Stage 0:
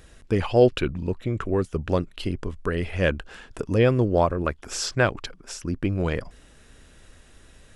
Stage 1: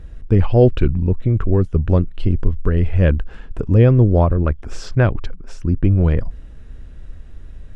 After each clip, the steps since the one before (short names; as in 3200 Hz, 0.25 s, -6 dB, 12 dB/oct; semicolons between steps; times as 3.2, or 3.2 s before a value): RIAA curve playback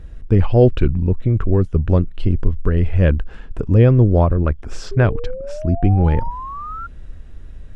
painted sound rise, 4.91–6.87, 390–1400 Hz -30 dBFS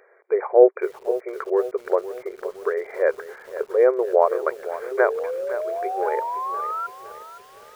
treble ducked by the level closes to 1700 Hz, closed at -9 dBFS; brick-wall FIR band-pass 370–2400 Hz; lo-fi delay 0.515 s, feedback 55%, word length 7-bit, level -13 dB; gain +2.5 dB